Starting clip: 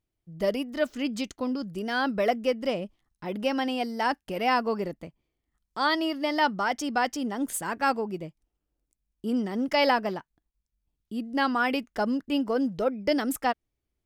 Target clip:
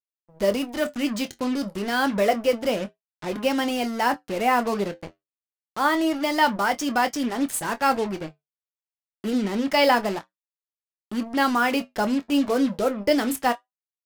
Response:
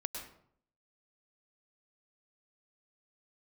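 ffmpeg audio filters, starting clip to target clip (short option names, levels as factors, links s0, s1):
-filter_complex "[0:a]asettb=1/sr,asplit=3[s0][s1][s2];[s0]atrim=end=4.094[s3];[s1]atrim=start=4.09:end=6.19,asetpts=PTS-STARTPTS,afade=t=in:d=0.004:c=qsin,afade=t=out:st=2.096:d=0.004:c=qsin,acrossover=split=2800[s4][s5];[s5]acompressor=threshold=0.00355:ratio=4:attack=1:release=60[s6];[s4][s6]amix=inputs=2:normalize=0[s7];[s2]atrim=start=6.186[s8];[s3][s7]acrossfade=d=0.004:c1=hsin:c2=qsin[s9];[s9][s8]acrossfade=d=0.004:c1=qsin:c2=hsin,acrusher=bits=5:mix=0:aa=0.5,flanger=delay=6.9:depth=4.7:regen=-66:speed=0.28:shape=triangular,asplit=2[s10][s11];[s11]adelay=25,volume=0.211[s12];[s10][s12]amix=inputs=2:normalize=0,volume=2.51"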